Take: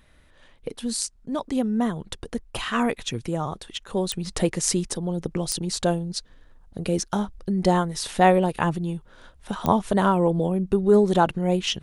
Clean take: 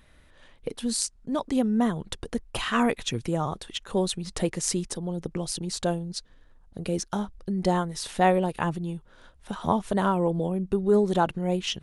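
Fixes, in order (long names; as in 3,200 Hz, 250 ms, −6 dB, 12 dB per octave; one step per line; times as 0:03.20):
click removal
level 0 dB, from 0:04.13 −4 dB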